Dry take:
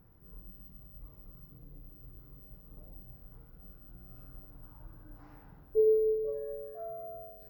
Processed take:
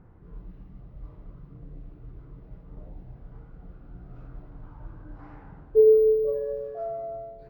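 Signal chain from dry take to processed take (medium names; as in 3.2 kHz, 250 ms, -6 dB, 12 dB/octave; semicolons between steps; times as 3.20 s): level-controlled noise filter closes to 1.9 kHz, open at -31 dBFS; trim +8.5 dB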